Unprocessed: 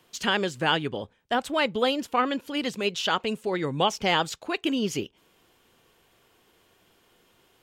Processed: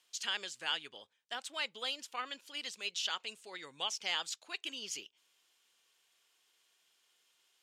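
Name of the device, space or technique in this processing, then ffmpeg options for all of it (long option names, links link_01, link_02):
piezo pickup straight into a mixer: -af "lowpass=6800,aderivative"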